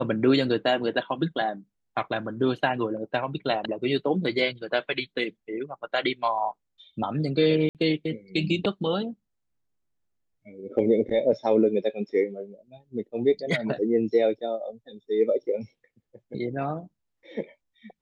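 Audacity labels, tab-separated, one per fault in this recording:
7.690000	7.750000	gap 58 ms

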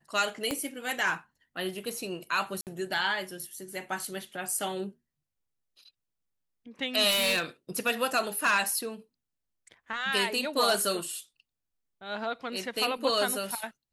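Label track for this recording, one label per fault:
0.510000	0.510000	pop -15 dBFS
2.610000	2.670000	gap 58 ms
7.100000	7.420000	clipped -22.5 dBFS

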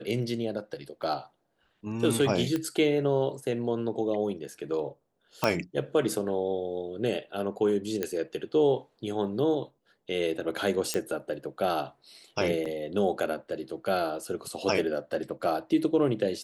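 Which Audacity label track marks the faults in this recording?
1.020000	1.030000	gap 5.8 ms
2.560000	2.560000	pop -17 dBFS
5.440000	5.440000	pop -10 dBFS
8.030000	8.030000	pop -15 dBFS
10.940000	10.940000	pop -13 dBFS
12.650000	12.660000	gap 5.4 ms

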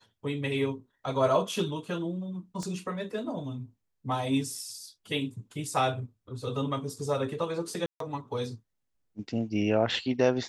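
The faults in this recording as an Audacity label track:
2.630000	2.630000	pop -25 dBFS
7.860000	8.000000	gap 0.143 s

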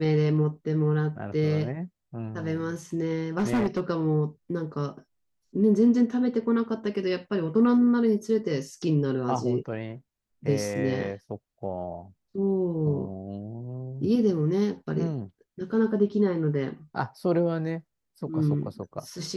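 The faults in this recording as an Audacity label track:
3.380000	3.800000	clipped -20.5 dBFS

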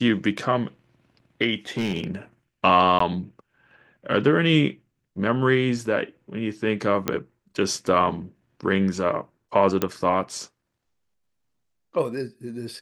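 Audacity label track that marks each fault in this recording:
1.770000	2.110000	clipped -20.5 dBFS
2.990000	3.000000	gap 14 ms
7.080000	7.080000	pop -8 dBFS
9.820000	9.820000	pop -8 dBFS

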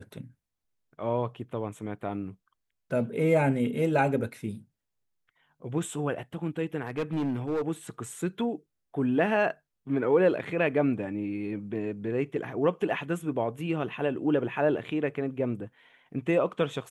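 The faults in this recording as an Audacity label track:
6.830000	7.620000	clipped -25 dBFS

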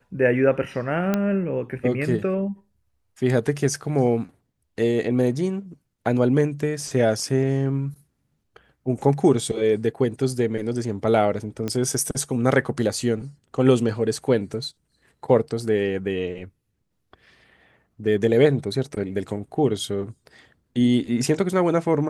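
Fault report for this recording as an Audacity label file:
1.140000	1.140000	pop -9 dBFS
11.680000	11.680000	pop -14 dBFS

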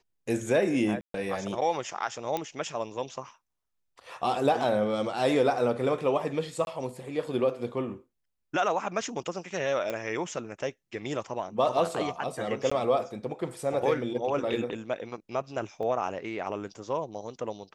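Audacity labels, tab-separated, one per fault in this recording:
1.010000	1.140000	gap 0.133 s
2.370000	2.370000	pop -16 dBFS
6.650000	6.670000	gap 21 ms
9.900000	9.900000	pop -18 dBFS
12.700000	12.710000	gap 15 ms
15.830000	15.830000	gap 2.6 ms

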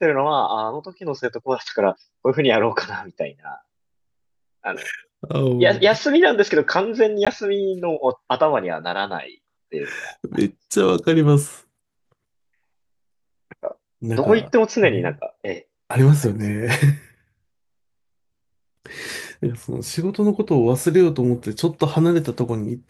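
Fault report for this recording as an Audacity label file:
7.250000	7.270000	gap 16 ms

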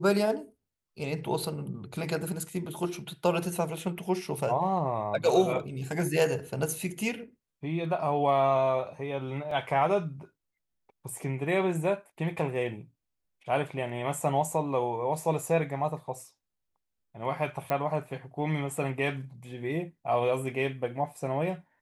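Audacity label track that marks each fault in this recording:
9.510000	9.510000	gap 3.4 ms
17.700000	17.700000	pop -16 dBFS

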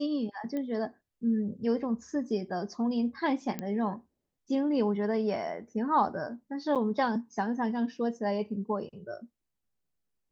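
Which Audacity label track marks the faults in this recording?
0.570000	0.570000	pop -24 dBFS
3.590000	3.590000	pop -20 dBFS
6.750000	6.760000	gap 7.5 ms

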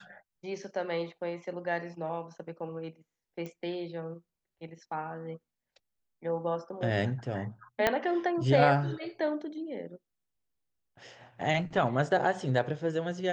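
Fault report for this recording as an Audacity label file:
3.460000	3.460000	pop -28 dBFS
7.870000	7.870000	pop -10 dBFS

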